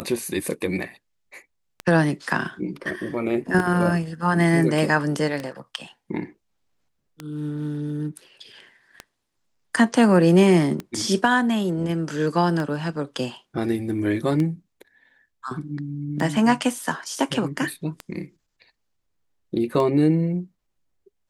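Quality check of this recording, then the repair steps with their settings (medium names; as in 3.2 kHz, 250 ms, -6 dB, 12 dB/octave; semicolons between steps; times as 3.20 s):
tick 33 1/3 rpm -15 dBFS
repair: de-click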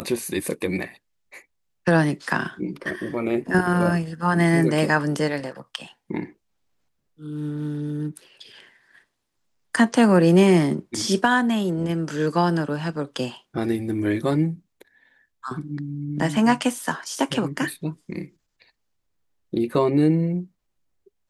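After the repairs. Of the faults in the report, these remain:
nothing left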